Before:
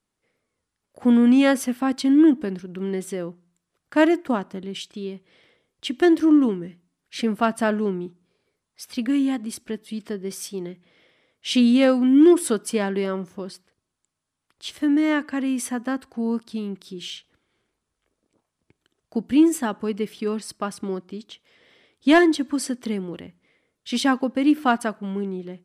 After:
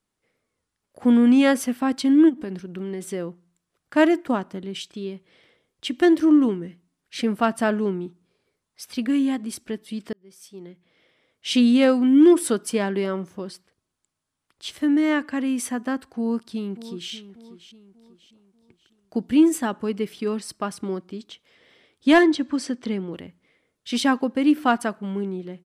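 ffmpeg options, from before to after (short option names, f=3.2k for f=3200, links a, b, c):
-filter_complex "[0:a]asplit=3[a][b][c];[a]afade=t=out:st=2.28:d=0.02[d];[b]acompressor=threshold=-26dB:ratio=6:attack=3.2:release=140:knee=1:detection=peak,afade=t=in:st=2.28:d=0.02,afade=t=out:st=3.11:d=0.02[e];[c]afade=t=in:st=3.11:d=0.02[f];[d][e][f]amix=inputs=3:normalize=0,asplit=2[g][h];[h]afade=t=in:st=16.08:d=0.01,afade=t=out:st=17.12:d=0.01,aecho=0:1:590|1180|1770|2360:0.188365|0.075346|0.0301384|0.0120554[i];[g][i]amix=inputs=2:normalize=0,asettb=1/sr,asplit=3[j][k][l];[j]atrim=end=22.234[m];[k]atrim=start=22.23:end=23.12,asetpts=PTS-STARTPTS,afade=t=in:d=0.004:c=qsin,afade=t=out:st=0.886:d=0.004:c=qsin,lowpass=6.1k[n];[l]atrim=start=23.116[o];[m][n]acrossfade=d=0.004:c1=hsin:c2=qsin[p];[p][o]acrossfade=d=0.004:c1=qsin:c2=hsin,asplit=2[q][r];[q]atrim=end=10.13,asetpts=PTS-STARTPTS,afade=t=out:st=10.126:d=0.004:c=hsin[s];[r]atrim=start=10.13,asetpts=PTS-STARTPTS,afade=t=in:d=1.35[t];[s][t]concat=n=2:v=0:a=1"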